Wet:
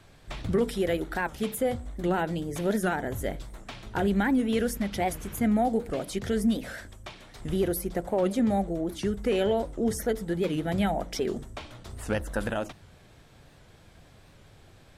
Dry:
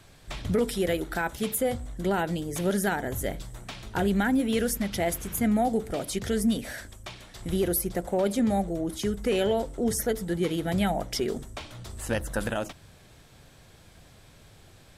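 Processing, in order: high shelf 4200 Hz -7.5 dB; notches 60/120/180 Hz; record warp 78 rpm, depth 160 cents

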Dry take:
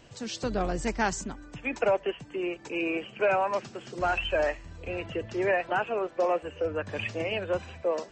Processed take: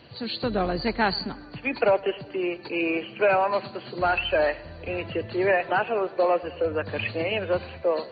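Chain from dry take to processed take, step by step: nonlinear frequency compression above 3900 Hz 4:1; HPF 64 Hz; darkening echo 0.103 s, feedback 65%, low-pass 4400 Hz, level -21 dB; gain +4 dB

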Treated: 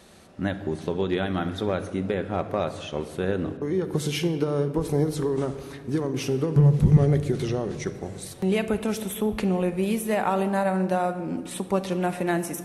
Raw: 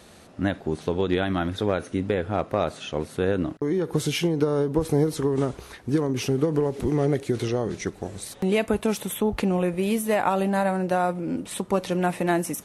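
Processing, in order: 6.56–6.97 resonant low shelf 230 Hz +10 dB, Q 3; on a send: reverb RT60 1.8 s, pre-delay 5 ms, DRR 9 dB; on the sum: gain -2.5 dB

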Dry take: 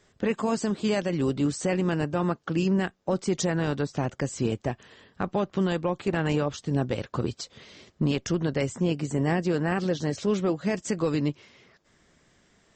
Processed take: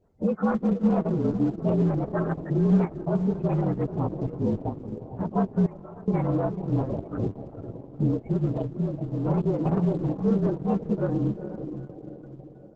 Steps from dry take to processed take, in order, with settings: inharmonic rescaling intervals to 116%; 2.04–2.51 bell 92 Hz -6.5 dB 2.9 oct; diffused feedback echo 0.474 s, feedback 49%, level -8.5 dB; in parallel at -9 dB: wavefolder -24 dBFS; 8.61–9.25 on the sum: compressor 8:1, threshold -26 dBFS, peak gain reduction 6.5 dB; LPF 1600 Hz 12 dB/oct; dynamic EQ 200 Hz, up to +6 dB, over -42 dBFS, Q 2.9; loudest bins only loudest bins 32; 5.66–6.08 level quantiser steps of 20 dB; Opus 10 kbps 48000 Hz

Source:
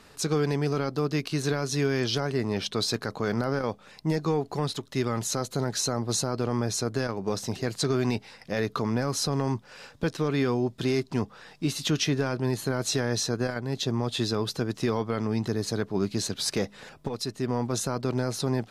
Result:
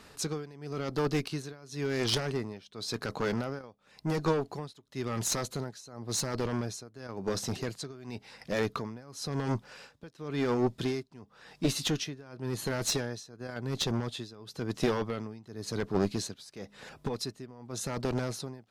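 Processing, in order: tremolo 0.94 Hz, depth 93%; added harmonics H 2 -6 dB, 8 -28 dB, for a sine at -15.5 dBFS

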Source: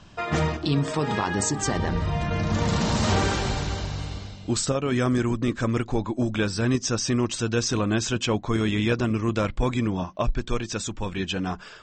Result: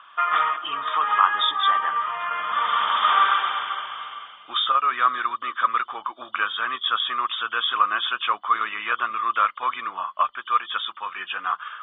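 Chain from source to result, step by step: nonlinear frequency compression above 2800 Hz 4:1; resonant high-pass 1200 Hz, resonance Q 8.6; notch 2900 Hz, Q 15

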